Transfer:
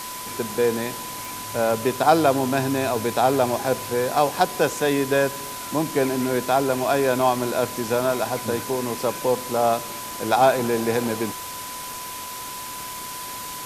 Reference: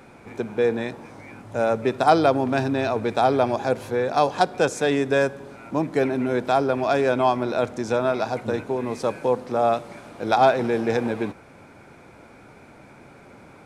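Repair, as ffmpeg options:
ffmpeg -i in.wav -af "adeclick=threshold=4,bandreject=frequency=1000:width=30,afwtdn=0.02" out.wav

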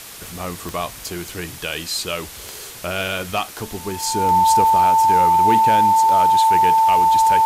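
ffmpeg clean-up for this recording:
ffmpeg -i in.wav -af "adeclick=threshold=4,bandreject=frequency=890:width=30,afwtdn=0.016" out.wav

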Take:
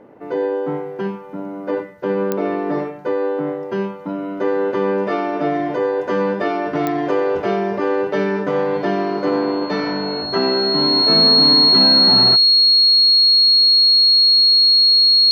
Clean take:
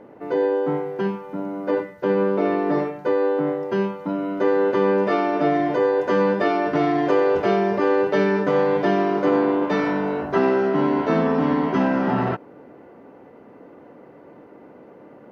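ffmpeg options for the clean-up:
ffmpeg -i in.wav -af "adeclick=threshold=4,bandreject=frequency=4300:width=30" out.wav

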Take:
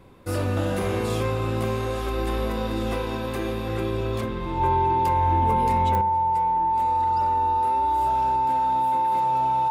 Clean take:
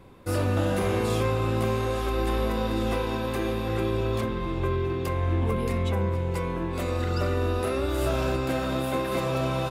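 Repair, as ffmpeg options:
ffmpeg -i in.wav -af "adeclick=threshold=4,bandreject=frequency=890:width=30,asetnsamples=nb_out_samples=441:pad=0,asendcmd='6.01 volume volume 9.5dB',volume=0dB" out.wav

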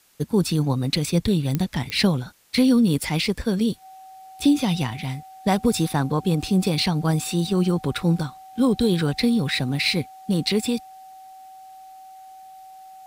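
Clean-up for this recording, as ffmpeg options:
ffmpeg -i in.wav -af "adeclick=threshold=4,bandreject=frequency=760:width=30,agate=range=-21dB:threshold=-36dB" out.wav

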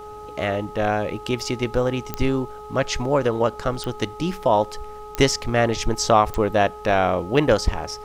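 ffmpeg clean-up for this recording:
ffmpeg -i in.wav -af "adeclick=threshold=4,bandreject=frequency=421.7:width_type=h:width=4,bandreject=frequency=843.4:width_type=h:width=4,bandreject=frequency=1265.1:width_type=h:width=4" out.wav

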